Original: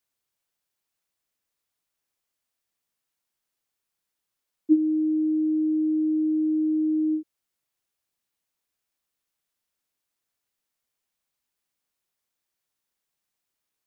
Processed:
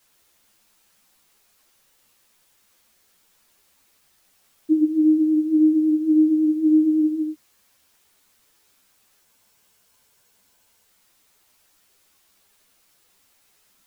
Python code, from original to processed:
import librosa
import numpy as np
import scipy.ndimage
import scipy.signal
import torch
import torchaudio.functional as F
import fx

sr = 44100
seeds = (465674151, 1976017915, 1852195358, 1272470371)

p1 = fx.rider(x, sr, range_db=10, speed_s=0.5)
p2 = x + F.gain(torch.from_numpy(p1), 0.0).numpy()
p3 = fx.quant_dither(p2, sr, seeds[0], bits=10, dither='triangular')
p4 = p3 + 10.0 ** (-5.5 / 20.0) * np.pad(p3, (int(116 * sr / 1000.0), 0))[:len(p3)]
p5 = fx.spec_freeze(p4, sr, seeds[1], at_s=9.27, hold_s=1.58)
y = fx.ensemble(p5, sr)